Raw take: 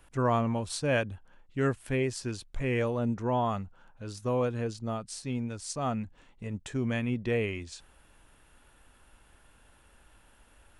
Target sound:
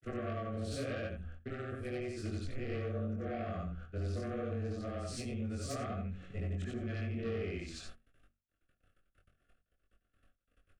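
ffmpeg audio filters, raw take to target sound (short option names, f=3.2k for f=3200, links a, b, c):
-filter_complex "[0:a]afftfilt=real='re':imag='-im':win_size=8192:overlap=0.75,agate=range=-55dB:threshold=-58dB:ratio=16:detection=peak,lowpass=f=2.1k:p=1,equalizer=f=100:t=o:w=1:g=3,bandreject=f=50:t=h:w=6,bandreject=f=100:t=h:w=6,bandreject=f=150:t=h:w=6,bandreject=f=200:t=h:w=6,bandreject=f=250:t=h:w=6,acompressor=threshold=-47dB:ratio=8,afreqshift=-18,aeval=exprs='0.0126*sin(PI/2*2*val(0)/0.0126)':c=same,asuperstop=centerf=920:order=20:qfactor=2.7,asplit=2[a][b];[b]adelay=22,volume=-3dB[c];[a][c]amix=inputs=2:normalize=0,volume=2.5dB"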